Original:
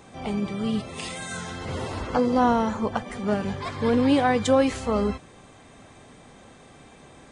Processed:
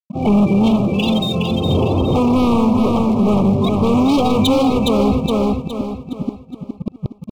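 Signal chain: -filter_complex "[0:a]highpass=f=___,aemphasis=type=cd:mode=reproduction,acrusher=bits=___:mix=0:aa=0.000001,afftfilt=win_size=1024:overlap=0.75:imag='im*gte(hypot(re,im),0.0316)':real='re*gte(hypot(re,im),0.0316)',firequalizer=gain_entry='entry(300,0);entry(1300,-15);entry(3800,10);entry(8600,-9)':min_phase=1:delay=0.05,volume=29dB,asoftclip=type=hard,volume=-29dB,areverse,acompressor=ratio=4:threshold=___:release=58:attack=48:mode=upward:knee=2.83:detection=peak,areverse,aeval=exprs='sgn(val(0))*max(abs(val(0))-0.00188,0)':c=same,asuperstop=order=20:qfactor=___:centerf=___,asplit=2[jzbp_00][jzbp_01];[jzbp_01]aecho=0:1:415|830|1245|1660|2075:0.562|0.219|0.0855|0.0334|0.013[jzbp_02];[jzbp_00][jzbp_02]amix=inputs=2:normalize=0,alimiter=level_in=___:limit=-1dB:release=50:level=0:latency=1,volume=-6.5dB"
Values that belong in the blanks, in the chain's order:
86, 7, -41dB, 1.8, 1700, 26dB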